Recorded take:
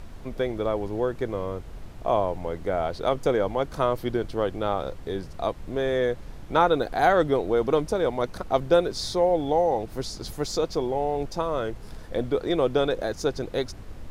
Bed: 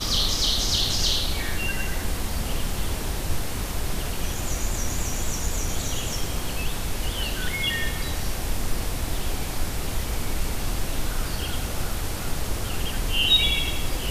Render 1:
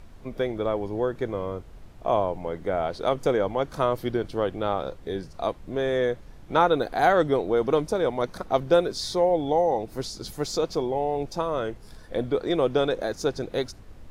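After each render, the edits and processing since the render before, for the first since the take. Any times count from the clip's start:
noise reduction from a noise print 6 dB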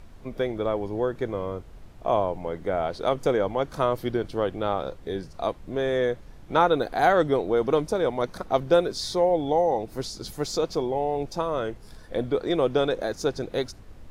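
no processing that can be heard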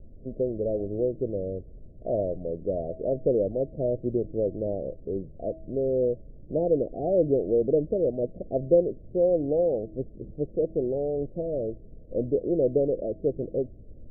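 Butterworth low-pass 630 Hz 72 dB per octave
hum removal 321.7 Hz, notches 2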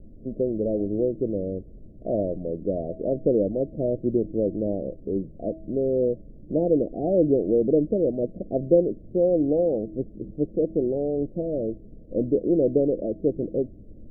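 hollow resonant body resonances 210/300 Hz, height 8 dB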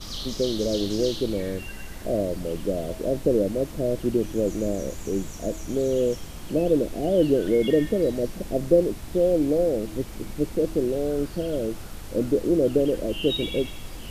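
mix in bed −11.5 dB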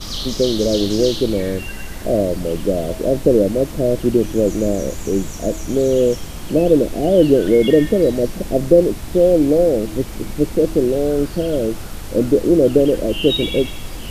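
level +8 dB
brickwall limiter −1 dBFS, peak gain reduction 1.5 dB

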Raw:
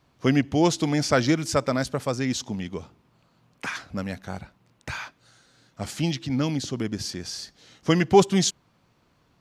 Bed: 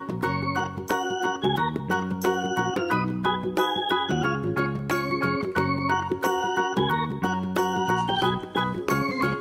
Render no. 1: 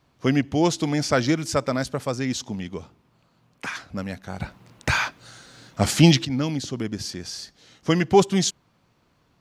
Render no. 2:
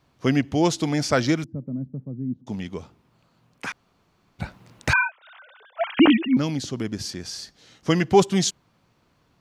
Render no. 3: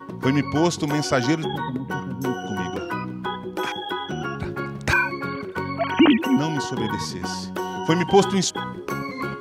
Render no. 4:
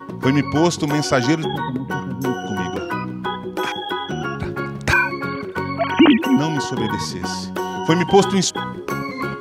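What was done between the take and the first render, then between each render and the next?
0:04.40–0:06.25: clip gain +11.5 dB
0:01.44–0:02.47: flat-topped band-pass 180 Hz, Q 1.2; 0:03.72–0:04.39: fill with room tone; 0:04.93–0:06.37: three sine waves on the formant tracks
mix in bed −4 dB
level +3.5 dB; brickwall limiter −2 dBFS, peak gain reduction 1.5 dB

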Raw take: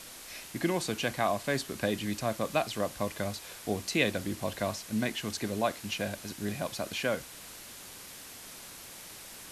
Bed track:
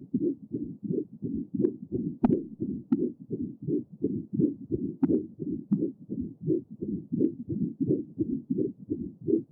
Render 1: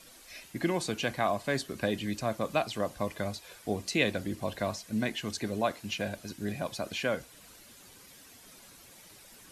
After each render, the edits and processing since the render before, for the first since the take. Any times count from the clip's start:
broadband denoise 10 dB, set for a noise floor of −47 dBFS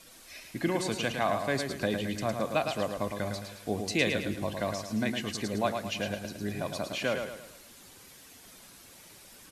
repeating echo 109 ms, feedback 42%, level −6 dB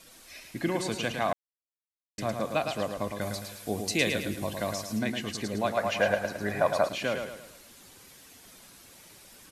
0:01.33–0:02.18: silence
0:03.21–0:04.99: high-shelf EQ 7,000 Hz +10 dB
0:05.77–0:06.89: flat-topped bell 1,000 Hz +11.5 dB 2.4 octaves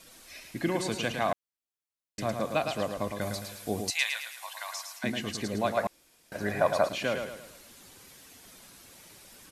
0:03.90–0:05.04: Chebyshev high-pass filter 850 Hz, order 4
0:05.87–0:06.32: fill with room tone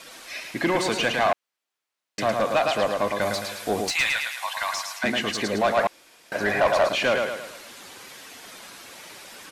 mid-hump overdrive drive 21 dB, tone 2,800 Hz, clips at −11 dBFS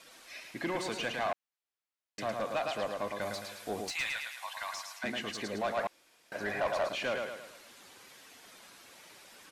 level −11.5 dB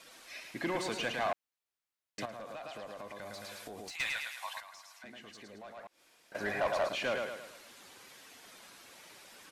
0:02.25–0:04.00: downward compressor 12 to 1, threshold −41 dBFS
0:04.60–0:06.35: downward compressor 2 to 1, threshold −60 dBFS

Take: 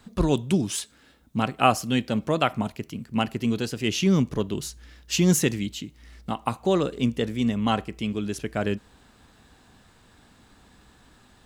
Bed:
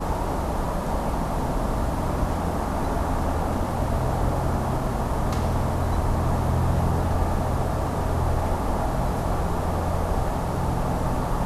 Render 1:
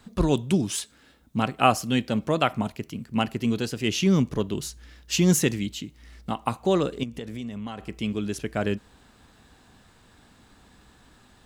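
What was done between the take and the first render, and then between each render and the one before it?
0:07.03–0:07.89: downward compressor 12 to 1, threshold −30 dBFS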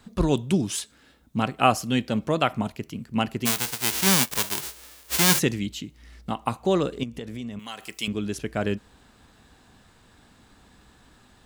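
0:03.45–0:05.38: spectral envelope flattened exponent 0.1
0:07.59–0:08.08: spectral tilt +4.5 dB per octave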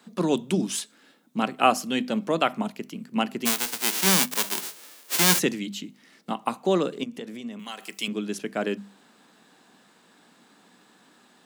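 Butterworth high-pass 170 Hz 36 dB per octave
mains-hum notches 50/100/150/200/250 Hz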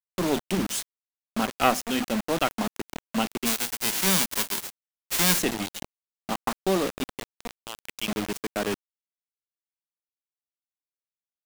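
one-sided soft clipper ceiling −20 dBFS
bit reduction 5 bits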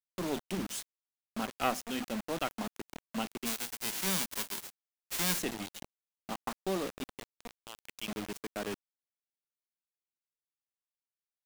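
level −9.5 dB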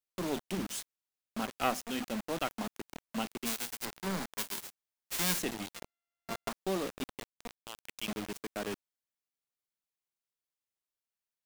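0:03.85–0:04.38: running median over 15 samples
0:05.74–0:06.49: samples sorted by size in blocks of 64 samples
0:07.00–0:08.12: mu-law and A-law mismatch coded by mu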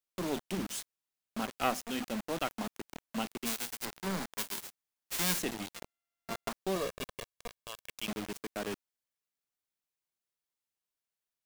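0:06.75–0:07.92: comb filter 1.8 ms

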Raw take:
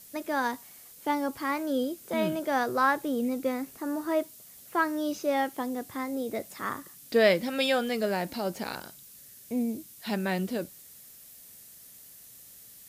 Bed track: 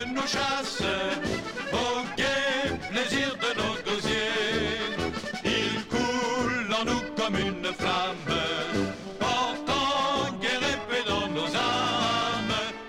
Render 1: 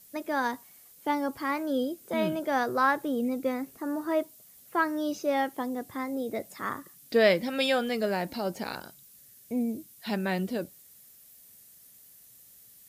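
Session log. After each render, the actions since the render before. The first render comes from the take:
broadband denoise 6 dB, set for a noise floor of −51 dBFS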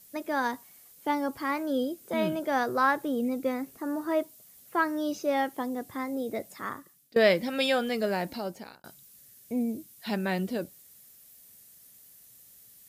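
0:06.23–0:07.16: fade out equal-power, to −22.5 dB
0:08.27–0:08.84: fade out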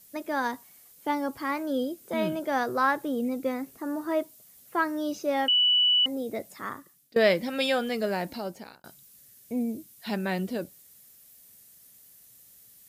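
0:05.48–0:06.06: beep over 2,960 Hz −18.5 dBFS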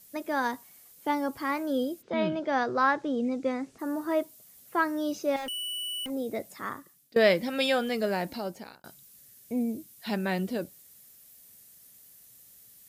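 0:02.01–0:03.78: low-pass filter 4,700 Hz → 8,200 Hz 24 dB per octave
0:05.36–0:06.10: hard clipping −34 dBFS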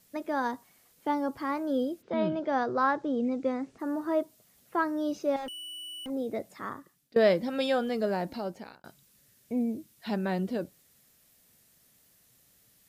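low-pass filter 3,300 Hz 6 dB per octave
dynamic equaliser 2,300 Hz, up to −7 dB, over −46 dBFS, Q 1.4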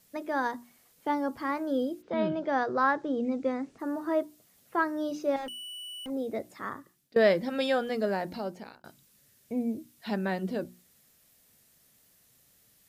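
mains-hum notches 60/120/180/240/300/360 Hz
dynamic equaliser 1,800 Hz, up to +4 dB, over −47 dBFS, Q 3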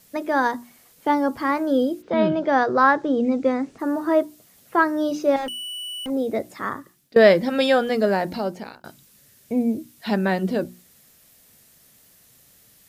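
level +9 dB

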